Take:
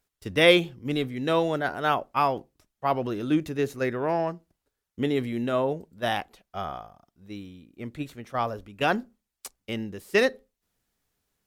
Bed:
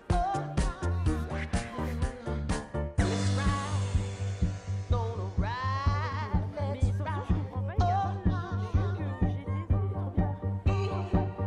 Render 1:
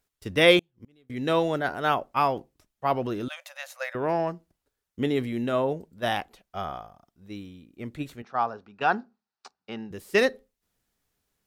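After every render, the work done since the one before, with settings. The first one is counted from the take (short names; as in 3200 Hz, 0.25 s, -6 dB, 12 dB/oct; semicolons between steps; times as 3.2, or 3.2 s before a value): 0.59–1.1 flipped gate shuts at -34 dBFS, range -34 dB; 3.28–3.95 brick-wall FIR high-pass 520 Hz; 8.22–9.91 speaker cabinet 210–4800 Hz, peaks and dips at 300 Hz -9 dB, 550 Hz -8 dB, 810 Hz +6 dB, 1400 Hz +4 dB, 2100 Hz -8 dB, 3200 Hz -9 dB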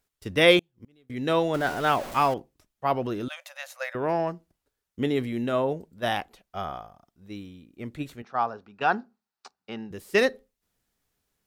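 1.54–2.34 zero-crossing step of -32.5 dBFS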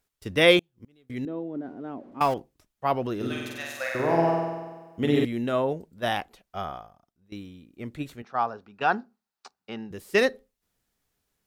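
1.25–2.21 band-pass 270 Hz, Q 3.2; 3.16–5.25 flutter echo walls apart 8.2 m, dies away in 1.3 s; 6.62–7.32 fade out, to -18 dB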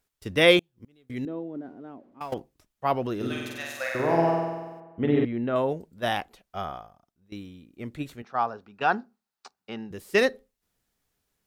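1.24–2.32 fade out, to -17 dB; 4.8–5.56 LPF 2000 Hz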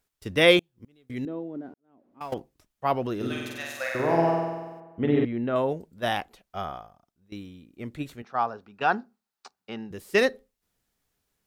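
1.74–2.26 fade in quadratic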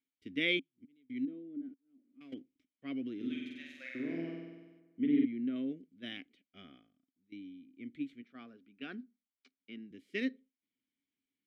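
vowel filter i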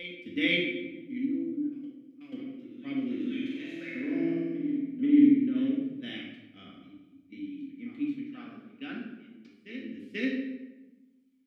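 reverse echo 0.487 s -13 dB; shoebox room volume 520 m³, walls mixed, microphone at 2 m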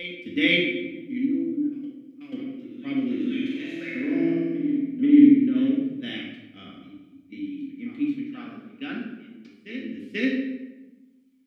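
gain +6 dB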